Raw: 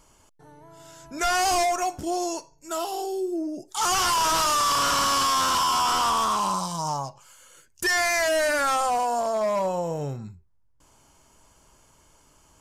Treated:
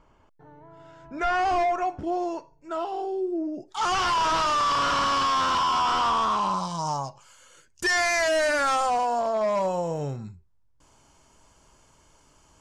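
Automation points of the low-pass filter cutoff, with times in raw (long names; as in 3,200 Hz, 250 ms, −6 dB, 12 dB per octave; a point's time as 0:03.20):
0:03.26 2,100 Hz
0:03.81 3,700 Hz
0:06.51 3,700 Hz
0:06.96 7,200 Hz
0:08.75 7,200 Hz
0:09.34 3,900 Hz
0:09.64 8,000 Hz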